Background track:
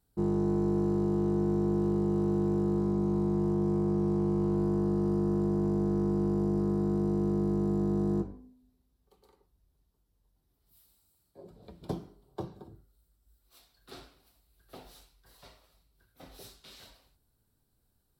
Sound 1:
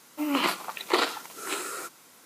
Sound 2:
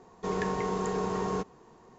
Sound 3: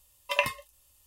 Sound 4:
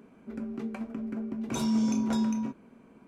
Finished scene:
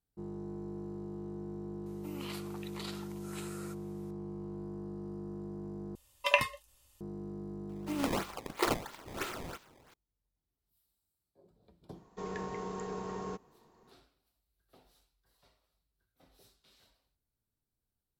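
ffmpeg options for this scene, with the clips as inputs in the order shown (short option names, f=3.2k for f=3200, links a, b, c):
-filter_complex "[1:a]asplit=2[a][b];[0:a]volume=-14dB[c];[a]acrossover=split=130|3000[d][e][f];[e]acompressor=threshold=-31dB:ratio=6:attack=3.2:release=140:knee=2.83:detection=peak[g];[d][g][f]amix=inputs=3:normalize=0[h];[3:a]highshelf=f=9.7k:g=-8.5[i];[b]acrusher=samples=18:mix=1:aa=0.000001:lfo=1:lforange=28.8:lforate=3[j];[c]asplit=2[k][l];[k]atrim=end=5.954[m];[i]atrim=end=1.06[n];[l]atrim=start=7.006[o];[h]atrim=end=2.25,asetpts=PTS-STARTPTS,volume=-14dB,afade=t=in:d=0.004:c=hsin,afade=t=out:st=2.246:d=0.004:c=hsin,adelay=1860[p];[j]atrim=end=2.25,asetpts=PTS-STARTPTS,volume=-6.5dB,afade=t=in:d=0.004:c=hsin,afade=t=out:st=2.246:d=0.004:c=hsin,adelay=7690[q];[2:a]atrim=end=1.98,asetpts=PTS-STARTPTS,volume=-9dB,afade=t=in:d=0.004:c=hsin,afade=t=out:st=1.976:d=0.004:c=hsin,adelay=11940[r];[m][n]acrossfade=d=0.004:c1=hsin:c2=hsin[s];[s][o]acrossfade=d=0.004:c1=hsin:c2=hsin[t];[t][p][q][r]amix=inputs=4:normalize=0"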